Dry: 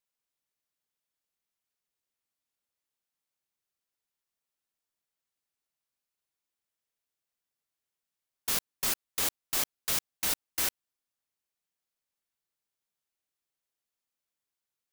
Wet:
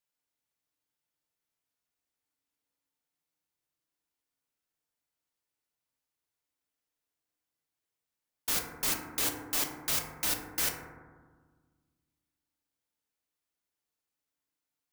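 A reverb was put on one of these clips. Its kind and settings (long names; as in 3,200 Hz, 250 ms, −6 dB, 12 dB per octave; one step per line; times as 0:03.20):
feedback delay network reverb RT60 1.5 s, low-frequency decay 1.45×, high-frequency decay 0.25×, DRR 1.5 dB
level −1.5 dB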